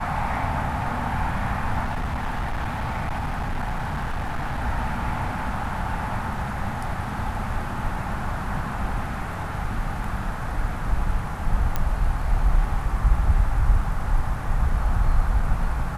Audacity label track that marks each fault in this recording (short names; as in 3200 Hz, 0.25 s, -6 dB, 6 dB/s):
1.840000	4.610000	clipped -23 dBFS
11.760000	11.760000	pop -11 dBFS